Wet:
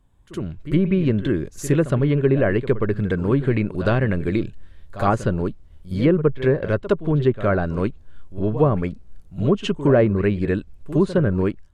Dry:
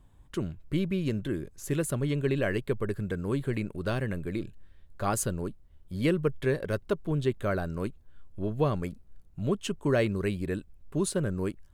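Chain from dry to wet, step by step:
treble cut that deepens with the level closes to 1,300 Hz, closed at −22.5 dBFS
automatic gain control gain up to 14.5 dB
echo ahead of the sound 64 ms −14 dB
level −3 dB

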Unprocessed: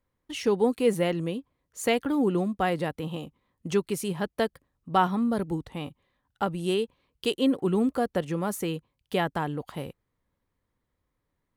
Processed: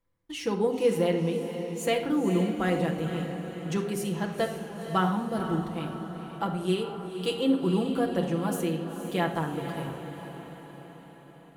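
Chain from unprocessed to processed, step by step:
feedback delay with all-pass diffusion 483 ms, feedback 57%, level −9 dB
on a send at −1.5 dB: convolution reverb RT60 0.85 s, pre-delay 6 ms
on the sum: level −4 dB

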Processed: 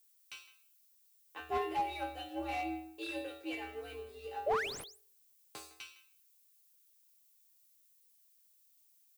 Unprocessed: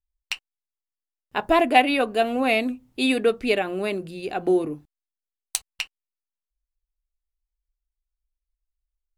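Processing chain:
stylus tracing distortion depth 0.04 ms
high-pass filter 54 Hz 12 dB per octave
in parallel at 0 dB: downward compressor, threshold −27 dBFS, peak gain reduction 15.5 dB
on the sum: dead-zone distortion −38 dBFS
resonators tuned to a chord B3 sus4, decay 0.5 s
sound drawn into the spectrogram rise, 0:04.46–0:04.84, 450–12,000 Hz −31 dBFS
background noise violet −68 dBFS
frequency shifter +74 Hz
far-end echo of a speakerphone 160 ms, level −16 dB
slew-rate limiting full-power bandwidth 30 Hz

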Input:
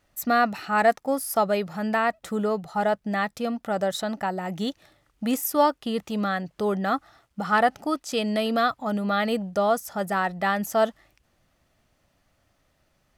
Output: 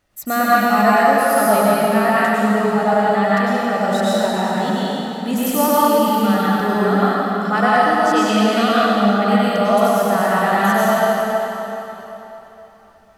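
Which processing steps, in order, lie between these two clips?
0:08.78–0:09.22: treble cut that deepens with the level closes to 1,100 Hz
convolution reverb RT60 3.6 s, pre-delay 91 ms, DRR −9 dB

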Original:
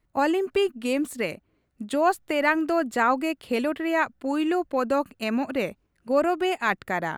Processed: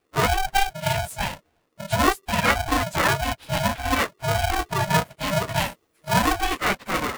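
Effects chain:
random phases in long frames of 50 ms
0:05.50–0:06.41: high-shelf EQ 3,400 Hz +11.5 dB
ring modulator with a square carrier 390 Hz
level +1.5 dB

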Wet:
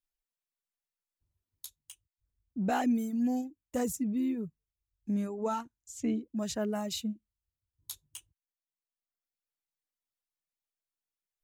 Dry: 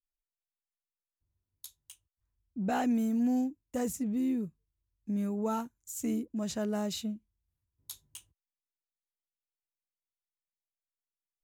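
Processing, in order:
0:05.14–0:06.24: low-pass filter 11,000 Hz → 4,500 Hz 12 dB per octave
reverb reduction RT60 1.3 s
level +2 dB

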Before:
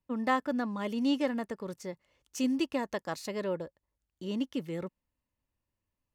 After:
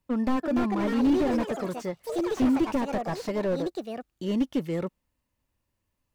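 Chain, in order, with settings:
delay with pitch and tempo change per echo 361 ms, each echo +5 semitones, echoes 3, each echo −6 dB
slew-rate limiting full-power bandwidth 16 Hz
level +7 dB

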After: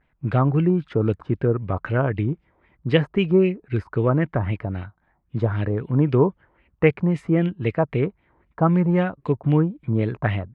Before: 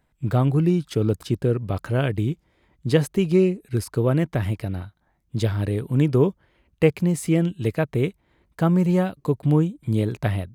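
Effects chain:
pitch vibrato 0.42 Hz 33 cents
auto-filter low-pass sine 3.8 Hz 950–2,700 Hz

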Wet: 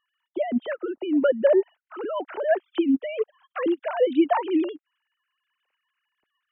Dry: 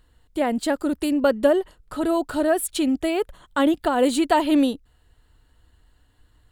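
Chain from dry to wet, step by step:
three sine waves on the formant tracks
level −2.5 dB

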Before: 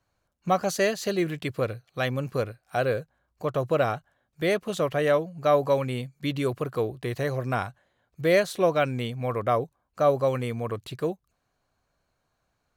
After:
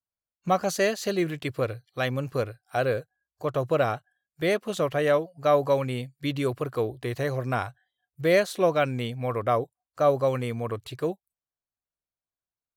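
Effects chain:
noise reduction from a noise print of the clip's start 26 dB

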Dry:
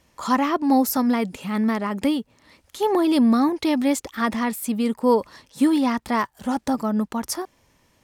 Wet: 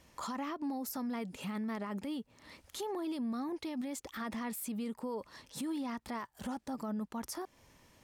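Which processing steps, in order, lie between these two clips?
downward compressor 2.5 to 1, threshold −35 dBFS, peak gain reduction 14 dB
brickwall limiter −30 dBFS, peak gain reduction 11 dB
level −1.5 dB

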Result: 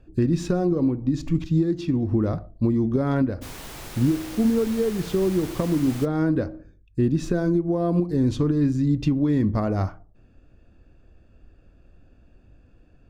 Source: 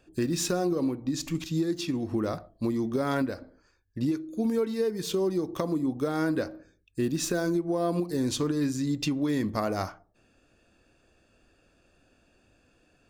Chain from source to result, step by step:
RIAA equalisation playback
0:03.41–0:06.04: background noise pink −38 dBFS

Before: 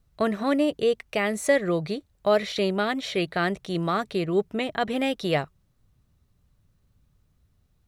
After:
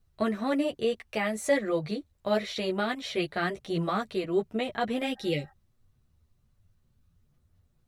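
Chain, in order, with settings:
healed spectral selection 0:05.18–0:05.49, 600–1,900 Hz before
multi-voice chorus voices 6, 1.1 Hz, delay 11 ms, depth 3 ms
level −1 dB

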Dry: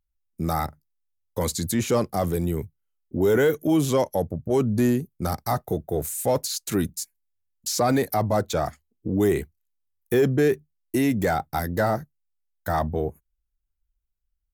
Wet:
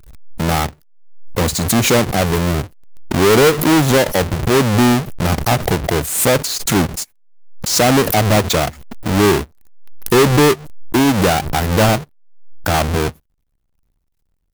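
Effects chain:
each half-wave held at its own peak
background raised ahead of every attack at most 63 dB per second
level +4.5 dB

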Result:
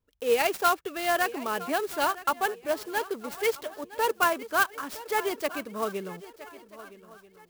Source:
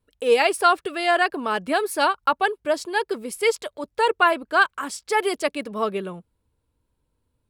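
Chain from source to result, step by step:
on a send: feedback echo with a long and a short gap by turns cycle 1,285 ms, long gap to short 3 to 1, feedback 30%, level −17 dB
on the sum: converter with an unsteady clock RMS 0.032 ms
level −6 dB

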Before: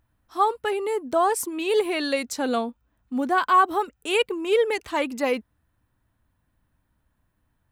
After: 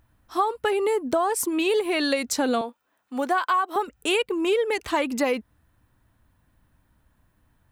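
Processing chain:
0:02.61–0:03.76: high-pass filter 480 Hz 12 dB per octave
downward compressor 10 to 1, threshold −26 dBFS, peak gain reduction 13 dB
level +6.5 dB

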